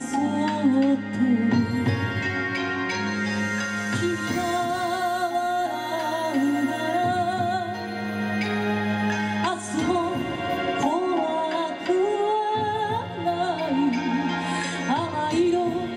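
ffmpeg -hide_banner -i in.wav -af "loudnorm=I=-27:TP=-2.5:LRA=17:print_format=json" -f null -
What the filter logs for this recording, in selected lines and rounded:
"input_i" : "-24.6",
"input_tp" : "-10.4",
"input_lra" : "0.7",
"input_thresh" : "-34.6",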